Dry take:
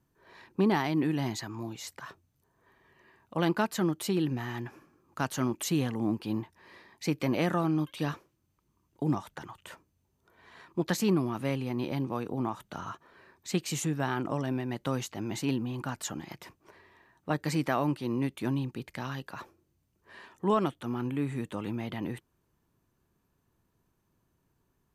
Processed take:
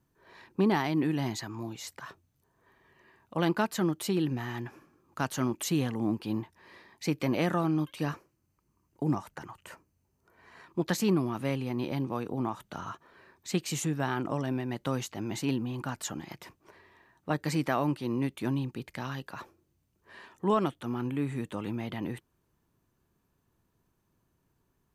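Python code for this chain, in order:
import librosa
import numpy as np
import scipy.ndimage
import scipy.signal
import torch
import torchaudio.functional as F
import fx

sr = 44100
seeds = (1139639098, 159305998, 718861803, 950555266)

y = fx.peak_eq(x, sr, hz=3500.0, db=-11.0, octaves=0.25, at=(7.95, 10.64))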